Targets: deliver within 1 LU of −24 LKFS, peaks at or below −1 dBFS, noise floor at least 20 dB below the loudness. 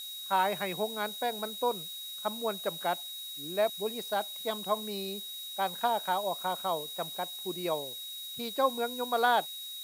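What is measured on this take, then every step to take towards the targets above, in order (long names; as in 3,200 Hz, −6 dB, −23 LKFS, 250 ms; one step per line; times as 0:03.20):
interfering tone 3,800 Hz; level of the tone −40 dBFS; background noise floor −42 dBFS; target noise floor −53 dBFS; integrated loudness −32.5 LKFS; sample peak −13.5 dBFS; target loudness −24.0 LKFS
→ notch filter 3,800 Hz, Q 30
noise reduction from a noise print 11 dB
level +8.5 dB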